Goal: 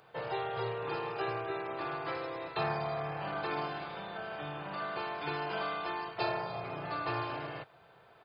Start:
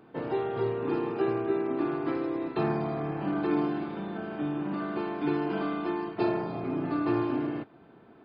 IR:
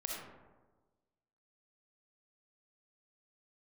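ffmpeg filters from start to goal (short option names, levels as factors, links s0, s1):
-af "firequalizer=gain_entry='entry(140,0);entry(250,-19);entry(500,4);entry(4700,13)':delay=0.05:min_phase=1,volume=0.562"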